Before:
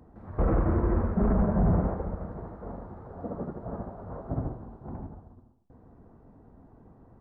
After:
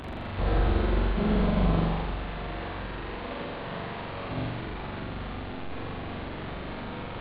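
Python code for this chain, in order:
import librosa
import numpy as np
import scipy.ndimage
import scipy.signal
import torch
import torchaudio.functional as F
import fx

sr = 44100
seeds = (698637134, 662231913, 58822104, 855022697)

y = fx.delta_mod(x, sr, bps=16000, step_db=-28.0)
y = fx.formant_shift(y, sr, semitones=4)
y = fx.room_flutter(y, sr, wall_m=7.3, rt60_s=1.1)
y = y * 10.0 ** (-5.5 / 20.0)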